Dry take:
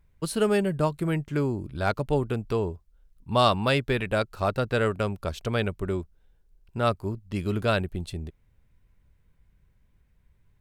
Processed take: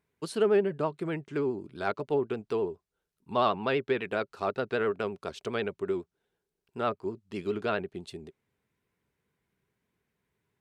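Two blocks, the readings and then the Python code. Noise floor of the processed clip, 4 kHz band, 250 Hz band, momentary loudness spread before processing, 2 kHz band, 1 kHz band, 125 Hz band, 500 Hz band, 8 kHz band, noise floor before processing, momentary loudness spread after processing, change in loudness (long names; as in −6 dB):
below −85 dBFS, −8.5 dB, −5.5 dB, 10 LU, −4.5 dB, −4.0 dB, −13.5 dB, −2.0 dB, can't be measured, −64 dBFS, 11 LU, −4.0 dB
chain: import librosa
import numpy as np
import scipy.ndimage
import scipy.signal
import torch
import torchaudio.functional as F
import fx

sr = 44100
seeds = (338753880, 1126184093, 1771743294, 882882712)

y = fx.env_lowpass_down(x, sr, base_hz=2500.0, full_db=-19.0)
y = scipy.signal.sosfilt(scipy.signal.butter(2, 220.0, 'highpass', fs=sr, output='sos'), y)
y = fx.peak_eq(y, sr, hz=400.0, db=7.0, octaves=0.22)
y = fx.notch(y, sr, hz=560.0, q=12.0)
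y = fx.vibrato(y, sr, rate_hz=12.0, depth_cents=60.0)
y = y * 10.0 ** (-4.0 / 20.0)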